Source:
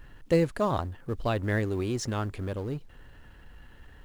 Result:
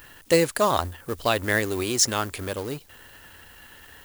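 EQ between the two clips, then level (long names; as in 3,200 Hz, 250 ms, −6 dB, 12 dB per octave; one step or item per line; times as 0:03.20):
RIAA equalisation recording
parametric band 84 Hz +11.5 dB 0.21 octaves
+7.5 dB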